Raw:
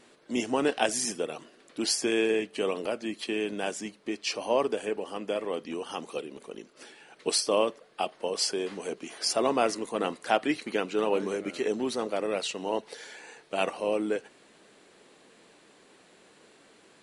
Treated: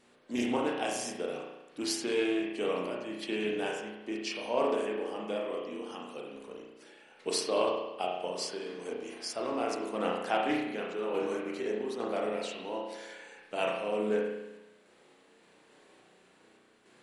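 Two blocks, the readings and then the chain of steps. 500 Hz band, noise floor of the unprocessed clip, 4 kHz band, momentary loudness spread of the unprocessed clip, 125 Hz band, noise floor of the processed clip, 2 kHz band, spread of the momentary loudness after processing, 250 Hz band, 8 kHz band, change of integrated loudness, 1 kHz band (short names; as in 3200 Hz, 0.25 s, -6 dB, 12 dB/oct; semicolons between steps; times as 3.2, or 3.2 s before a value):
-3.0 dB, -59 dBFS, -6.0 dB, 12 LU, -3.0 dB, -63 dBFS, -3.5 dB, 12 LU, -2.5 dB, -8.0 dB, -4.0 dB, -3.0 dB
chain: random-step tremolo; spring tank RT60 1 s, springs 33 ms, chirp 75 ms, DRR -2 dB; Doppler distortion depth 0.13 ms; gain -5 dB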